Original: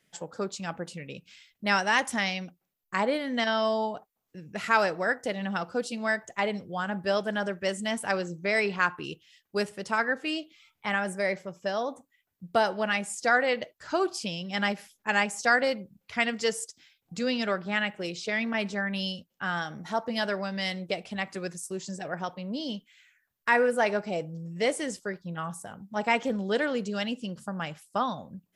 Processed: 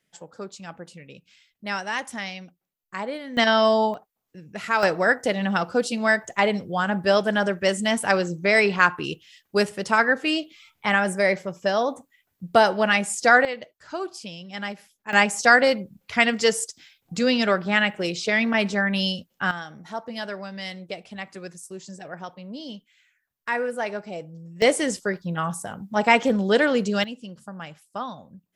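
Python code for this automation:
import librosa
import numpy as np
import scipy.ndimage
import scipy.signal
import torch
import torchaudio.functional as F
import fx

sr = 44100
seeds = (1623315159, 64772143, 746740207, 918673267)

y = fx.gain(x, sr, db=fx.steps((0.0, -4.0), (3.37, 8.0), (3.94, 0.5), (4.83, 7.5), (13.45, -4.0), (15.13, 7.5), (19.51, -3.0), (24.62, 8.0), (27.04, -3.5)))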